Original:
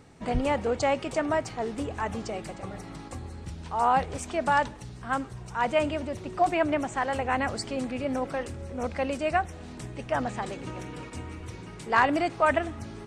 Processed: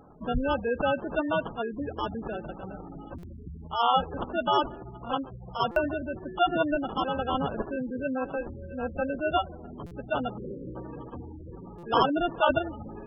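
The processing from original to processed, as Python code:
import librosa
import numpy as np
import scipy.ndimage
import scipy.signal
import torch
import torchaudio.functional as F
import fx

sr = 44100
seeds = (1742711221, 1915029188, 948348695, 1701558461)

p1 = fx.quant_dither(x, sr, seeds[0], bits=10, dither='none')
p2 = fx.high_shelf(p1, sr, hz=5700.0, db=10.5)
p3 = p2 + fx.echo_wet_highpass(p2, sr, ms=76, feedback_pct=85, hz=1700.0, wet_db=-15.0, dry=0)
p4 = fx.sample_hold(p3, sr, seeds[1], rate_hz=2100.0, jitter_pct=0)
p5 = fx.spec_gate(p4, sr, threshold_db=-15, keep='strong')
p6 = fx.peak_eq(p5, sr, hz=100.0, db=-8.5, octaves=0.52)
p7 = fx.spec_erase(p6, sr, start_s=10.37, length_s=0.39, low_hz=570.0, high_hz=8500.0)
y = fx.buffer_glitch(p7, sr, at_s=(3.18, 5.71, 9.86, 11.78), block=256, repeats=8)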